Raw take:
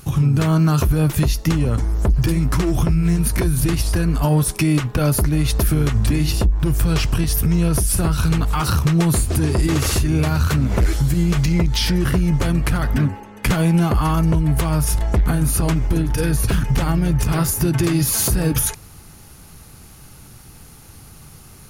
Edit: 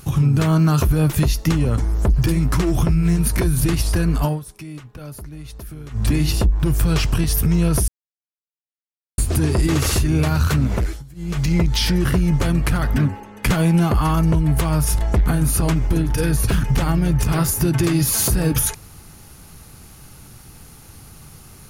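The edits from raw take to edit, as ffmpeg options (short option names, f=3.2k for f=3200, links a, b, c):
-filter_complex "[0:a]asplit=7[a][b][c][d][e][f][g];[a]atrim=end=4.4,asetpts=PTS-STARTPTS,afade=t=out:st=4.22:d=0.18:silence=0.133352[h];[b]atrim=start=4.4:end=5.9,asetpts=PTS-STARTPTS,volume=-17.5dB[i];[c]atrim=start=5.9:end=7.88,asetpts=PTS-STARTPTS,afade=t=in:d=0.18:silence=0.133352,afade=t=out:st=1.976:d=0.004:c=hsin[j];[d]atrim=start=7.88:end=9.18,asetpts=PTS-STARTPTS,volume=0[k];[e]atrim=start=9.18:end=11.04,asetpts=PTS-STARTPTS,afade=t=in:d=0.004:c=hsin,afade=t=out:st=1.48:d=0.38:silence=0.0707946[l];[f]atrim=start=11.04:end=11.15,asetpts=PTS-STARTPTS,volume=-23dB[m];[g]atrim=start=11.15,asetpts=PTS-STARTPTS,afade=t=in:d=0.38:silence=0.0707946[n];[h][i][j][k][l][m][n]concat=n=7:v=0:a=1"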